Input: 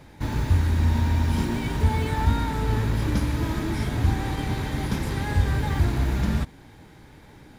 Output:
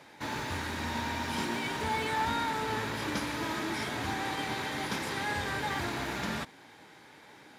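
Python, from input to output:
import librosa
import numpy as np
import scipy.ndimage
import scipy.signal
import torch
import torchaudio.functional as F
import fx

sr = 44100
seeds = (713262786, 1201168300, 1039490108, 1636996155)

y = fx.weighting(x, sr, curve='A')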